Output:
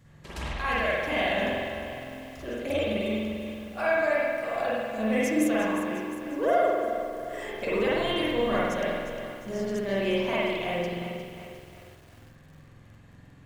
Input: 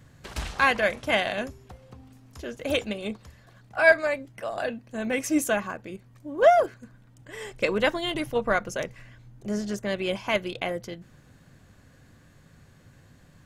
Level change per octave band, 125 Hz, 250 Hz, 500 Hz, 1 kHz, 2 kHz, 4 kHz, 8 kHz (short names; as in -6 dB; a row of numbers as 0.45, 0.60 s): +1.5, +2.5, -0.5, -2.0, -4.0, -1.5, -5.5 dB